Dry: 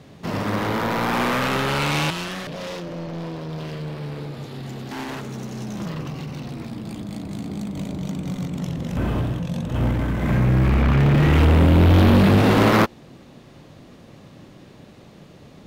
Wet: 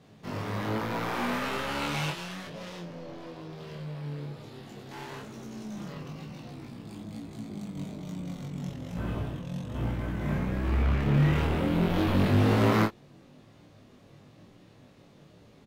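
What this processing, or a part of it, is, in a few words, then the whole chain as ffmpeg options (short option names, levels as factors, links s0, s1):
double-tracked vocal: -filter_complex "[0:a]asplit=2[s0][s1];[s1]adelay=28,volume=0.562[s2];[s0][s2]amix=inputs=2:normalize=0,flanger=delay=17.5:depth=3.5:speed=1.1,volume=0.422"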